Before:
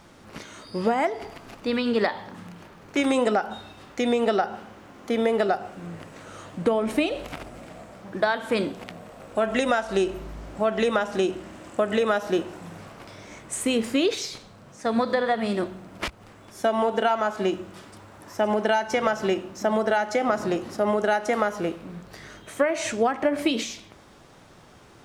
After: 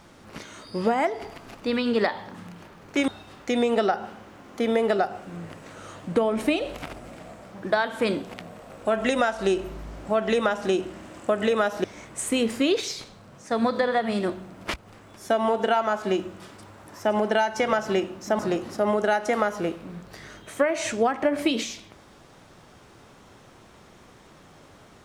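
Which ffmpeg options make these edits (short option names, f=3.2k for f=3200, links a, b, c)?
-filter_complex "[0:a]asplit=4[a][b][c][d];[a]atrim=end=3.082[e];[b]atrim=start=3.578:end=12.342[f];[c]atrim=start=13.178:end=19.732[g];[d]atrim=start=20.388[h];[e][f]acrossfade=d=0.004:c1=hsin:c2=hsin[i];[i][g]acrossfade=d=0.004:c1=hsin:c2=hsin[j];[j][h]acrossfade=d=0.004:c1=hsin:c2=hsin"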